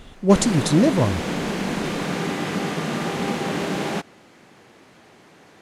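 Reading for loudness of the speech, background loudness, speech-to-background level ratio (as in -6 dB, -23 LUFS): -19.5 LUFS, -26.0 LUFS, 6.5 dB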